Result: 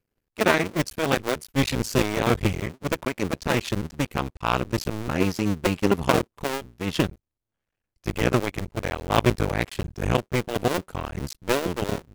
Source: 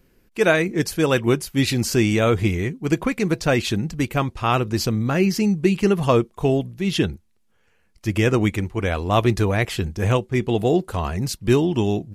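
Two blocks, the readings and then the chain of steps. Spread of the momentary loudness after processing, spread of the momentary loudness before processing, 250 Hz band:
9 LU, 6 LU, -6.0 dB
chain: cycle switcher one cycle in 2, muted; power-law waveshaper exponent 1.4; trim +2.5 dB

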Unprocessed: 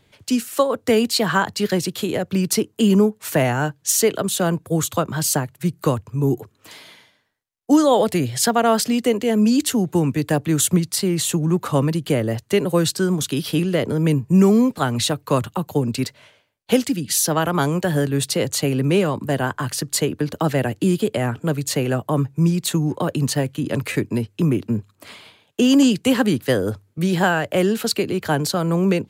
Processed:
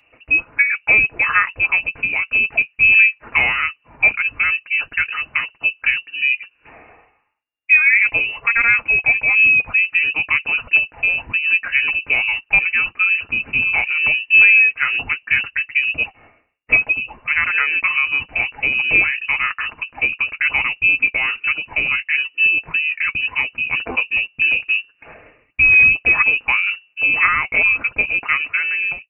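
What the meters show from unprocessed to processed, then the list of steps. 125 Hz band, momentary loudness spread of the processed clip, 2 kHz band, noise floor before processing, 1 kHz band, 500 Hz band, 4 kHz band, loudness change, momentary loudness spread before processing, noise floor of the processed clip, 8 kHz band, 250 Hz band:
under -15 dB, 9 LU, +17.5 dB, -62 dBFS, -3.0 dB, -18.0 dB, -0.5 dB, +5.0 dB, 6 LU, -60 dBFS, under -40 dB, -23.5 dB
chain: fade out at the end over 0.52 s; frequency inversion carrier 2.8 kHz; comb of notches 190 Hz; trim +3.5 dB

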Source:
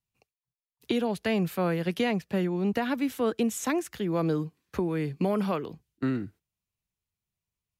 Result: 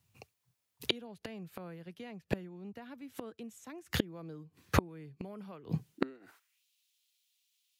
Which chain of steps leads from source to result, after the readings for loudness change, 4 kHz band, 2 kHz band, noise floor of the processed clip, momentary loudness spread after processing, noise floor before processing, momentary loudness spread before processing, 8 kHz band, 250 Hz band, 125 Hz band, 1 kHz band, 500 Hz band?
-10.5 dB, -1.0 dB, -7.0 dB, -82 dBFS, 15 LU, under -85 dBFS, 5 LU, -10.5 dB, -12.5 dB, -8.0 dB, -9.5 dB, -13.0 dB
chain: high-pass sweep 89 Hz -> 3.4 kHz, 5.71–6.65 s; inverted gate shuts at -26 dBFS, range -33 dB; trim +12.5 dB

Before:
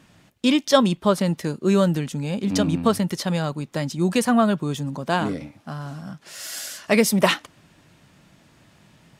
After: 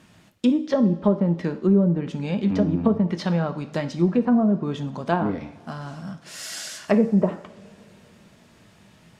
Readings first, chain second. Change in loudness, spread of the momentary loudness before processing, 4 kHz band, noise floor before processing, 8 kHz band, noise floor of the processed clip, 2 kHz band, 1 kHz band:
-0.5 dB, 15 LU, -10.5 dB, -57 dBFS, -9.5 dB, -54 dBFS, -8.0 dB, -5.0 dB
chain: low-pass that closes with the level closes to 460 Hz, closed at -15 dBFS; two-slope reverb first 0.53 s, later 4 s, from -22 dB, DRR 8 dB

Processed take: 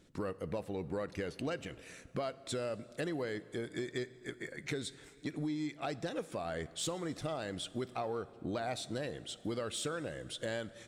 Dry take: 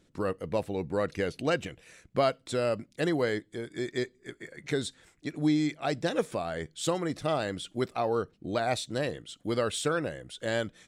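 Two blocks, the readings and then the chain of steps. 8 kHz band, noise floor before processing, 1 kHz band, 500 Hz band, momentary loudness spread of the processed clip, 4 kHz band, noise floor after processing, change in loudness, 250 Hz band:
-4.0 dB, -66 dBFS, -9.0 dB, -9.0 dB, 5 LU, -5.5 dB, -57 dBFS, -8.5 dB, -8.0 dB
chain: compression, threshold -35 dBFS, peak gain reduction 13.5 dB; saturation -26 dBFS, distortion -24 dB; plate-style reverb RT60 3.1 s, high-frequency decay 0.7×, DRR 16.5 dB; trim +1 dB

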